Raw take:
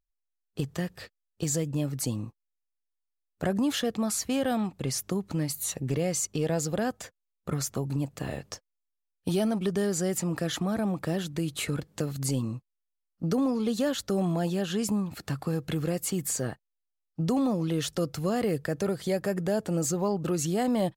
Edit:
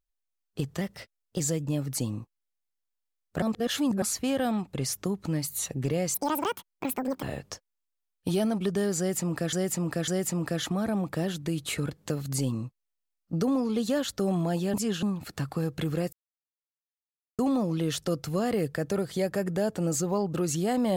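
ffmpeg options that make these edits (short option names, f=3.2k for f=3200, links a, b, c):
-filter_complex "[0:a]asplit=13[a][b][c][d][e][f][g][h][i][j][k][l][m];[a]atrim=end=0.814[n];[b]atrim=start=0.81:end=1.46,asetpts=PTS-STARTPTS,asetrate=48510,aresample=44100,atrim=end_sample=26059,asetpts=PTS-STARTPTS[o];[c]atrim=start=1.456:end=3.482[p];[d]atrim=start=3.478:end=4.082,asetpts=PTS-STARTPTS,areverse[q];[e]atrim=start=4.078:end=6.204[r];[f]atrim=start=6.2:end=8.23,asetpts=PTS-STARTPTS,asetrate=82467,aresample=44100,atrim=end_sample=47873,asetpts=PTS-STARTPTS[s];[g]atrim=start=8.226:end=10.532[t];[h]atrim=start=9.978:end=10.532[u];[i]atrim=start=9.978:end=14.642[v];[j]atrim=start=14.638:end=14.932,asetpts=PTS-STARTPTS,areverse[w];[k]atrim=start=14.928:end=16.03,asetpts=PTS-STARTPTS,afade=t=out:st=1.098:d=0.004:c=hsin[x];[l]atrim=start=16.03:end=17.29,asetpts=PTS-STARTPTS,volume=0[y];[m]atrim=start=17.29,asetpts=PTS-STARTPTS,afade=t=in:d=0.004:c=hsin[z];[n][o]acrossfade=d=0.004:c1=hsin:c2=hsin[aa];[aa][p]acrossfade=d=0.004:c1=hsin:c2=hsin[ab];[ab][q]acrossfade=d=0.004:c1=hsin:c2=hsin[ac];[ac][r]acrossfade=d=0.004:c1=hsin:c2=hsin[ad];[ad][s]acrossfade=d=0.004:c1=hsin:c2=hsin[ae];[ae][t]acrossfade=d=0.004:c1=hsin:c2=hsin[af];[af][u]acrossfade=d=0.004:c1=hsin:c2=hsin[ag];[ag][v]acrossfade=d=0.004:c1=hsin:c2=hsin[ah];[ah][w]acrossfade=d=0.004:c1=hsin:c2=hsin[ai];[x][y][z]concat=n=3:v=0:a=1[aj];[ai][aj]acrossfade=d=0.004:c1=hsin:c2=hsin"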